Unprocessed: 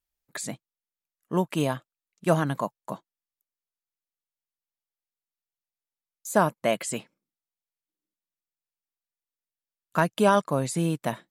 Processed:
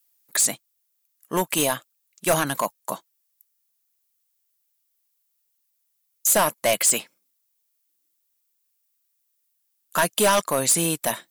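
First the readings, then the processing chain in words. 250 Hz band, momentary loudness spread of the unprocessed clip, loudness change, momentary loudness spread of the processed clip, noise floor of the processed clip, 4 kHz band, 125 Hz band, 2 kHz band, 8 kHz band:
-2.0 dB, 18 LU, +5.0 dB, 10 LU, -73 dBFS, +11.0 dB, -5.0 dB, +5.5 dB, +16.5 dB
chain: RIAA curve recording; hard clip -20.5 dBFS, distortion -8 dB; gain +6.5 dB

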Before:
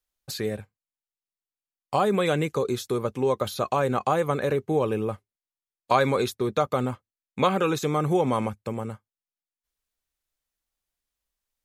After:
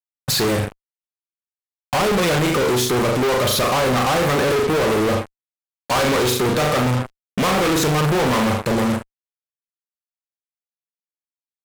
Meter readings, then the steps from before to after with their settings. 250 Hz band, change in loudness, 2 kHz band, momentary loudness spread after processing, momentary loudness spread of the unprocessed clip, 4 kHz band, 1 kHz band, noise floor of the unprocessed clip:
+7.5 dB, +7.0 dB, +11.5 dB, 6 LU, 11 LU, +13.5 dB, +5.5 dB, under -85 dBFS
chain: flutter echo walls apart 6.9 m, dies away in 0.38 s; fuzz box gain 42 dB, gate -45 dBFS; gain -3.5 dB

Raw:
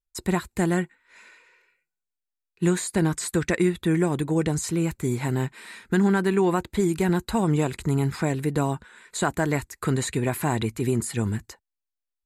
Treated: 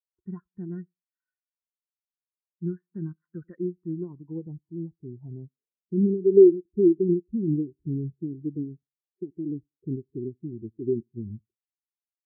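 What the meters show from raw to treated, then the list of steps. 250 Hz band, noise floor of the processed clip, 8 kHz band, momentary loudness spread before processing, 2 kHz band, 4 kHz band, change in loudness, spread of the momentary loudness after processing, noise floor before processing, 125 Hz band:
-3.0 dB, under -85 dBFS, under -40 dB, 6 LU, under -35 dB, under -40 dB, -1.0 dB, 20 LU, under -85 dBFS, -8.5 dB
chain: dynamic EQ 700 Hz, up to -4 dB, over -36 dBFS, Q 1.1; in parallel at +0.5 dB: compressor, threshold -31 dBFS, peak gain reduction 13.5 dB; on the sum: low-pass sweep 1400 Hz -> 370 Hz, 3.39–6.77; feedback echo 89 ms, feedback 41%, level -20 dB; spectral expander 2.5:1; gain -1 dB

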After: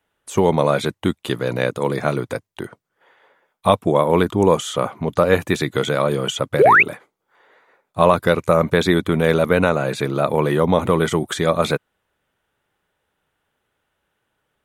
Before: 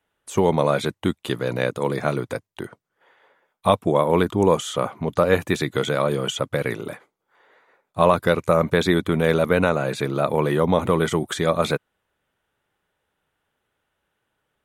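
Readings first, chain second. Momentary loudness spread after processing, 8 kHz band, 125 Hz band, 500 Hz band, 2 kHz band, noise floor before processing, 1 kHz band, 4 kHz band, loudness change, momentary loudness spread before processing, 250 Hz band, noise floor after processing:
8 LU, +2.5 dB, +2.5 dB, +3.0 dB, +6.0 dB, -77 dBFS, +4.0 dB, +2.5 dB, +3.5 dB, 9 LU, +2.5 dB, -75 dBFS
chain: painted sound rise, 6.59–6.83, 340–2800 Hz -13 dBFS; gain +2.5 dB

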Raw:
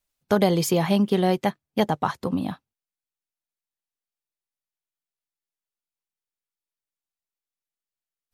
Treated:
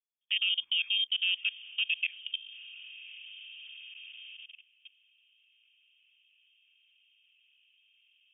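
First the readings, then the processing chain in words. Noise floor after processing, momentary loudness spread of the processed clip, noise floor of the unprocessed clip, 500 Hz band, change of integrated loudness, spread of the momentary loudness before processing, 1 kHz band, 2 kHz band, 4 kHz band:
-69 dBFS, 18 LU, under -85 dBFS, under -40 dB, -6.0 dB, 8 LU, under -40 dB, +3.0 dB, +8.0 dB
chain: low-pass sweep 890 Hz -> 130 Hz, 1.74–4.68; diffused feedback echo 1.049 s, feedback 54%, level -12.5 dB; level quantiser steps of 20 dB; inverted band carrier 3400 Hz; gain -8 dB

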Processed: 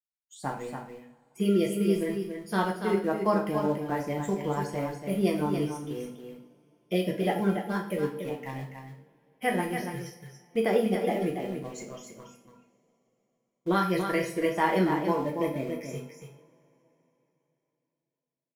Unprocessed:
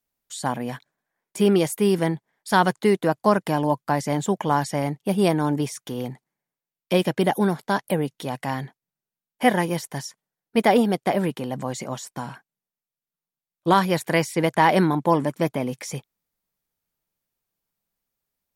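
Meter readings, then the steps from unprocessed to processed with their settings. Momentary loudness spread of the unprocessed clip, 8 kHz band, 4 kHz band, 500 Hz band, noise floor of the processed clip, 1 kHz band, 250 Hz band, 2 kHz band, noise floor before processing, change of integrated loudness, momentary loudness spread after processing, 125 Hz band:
14 LU, -10.5 dB, -9.0 dB, -5.5 dB, -84 dBFS, -8.5 dB, -5.5 dB, -7.0 dB, under -85 dBFS, -6.0 dB, 16 LU, -7.0 dB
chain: spectral noise reduction 26 dB; dynamic EQ 3400 Hz, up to -3 dB, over -40 dBFS, Q 0.94; rotary speaker horn 6 Hz; in parallel at -8 dB: sample gate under -30 dBFS; on the sum: resonator 460 Hz, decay 0.32 s, harmonics odd, mix 70%; on a send: echo 0.284 s -7 dB; on the sum: two-slope reverb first 0.45 s, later 3.7 s, from -28 dB, DRR 0 dB

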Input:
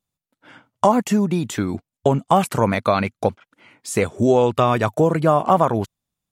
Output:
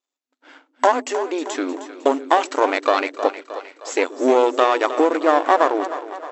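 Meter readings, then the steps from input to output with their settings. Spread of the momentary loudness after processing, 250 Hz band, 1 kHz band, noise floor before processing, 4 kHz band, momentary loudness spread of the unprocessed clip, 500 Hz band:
11 LU, -3.5 dB, +1.0 dB, under -85 dBFS, +3.0 dB, 9 LU, +0.5 dB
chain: half-wave gain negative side -12 dB; split-band echo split 370 Hz, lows 0.129 s, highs 0.311 s, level -12 dB; FFT band-pass 250–7900 Hz; gain +3.5 dB

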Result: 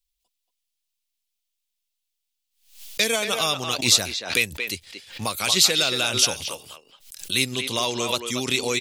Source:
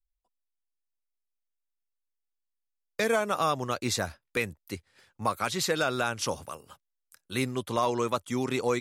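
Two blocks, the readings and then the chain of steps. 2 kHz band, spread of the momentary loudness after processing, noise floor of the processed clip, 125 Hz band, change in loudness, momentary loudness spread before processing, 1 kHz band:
+7.0 dB, 15 LU, -80 dBFS, +1.5 dB, +8.0 dB, 14 LU, -1.0 dB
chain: resonant high shelf 2100 Hz +12.5 dB, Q 1.5; speakerphone echo 0.23 s, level -6 dB; backwards sustainer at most 120 dB/s

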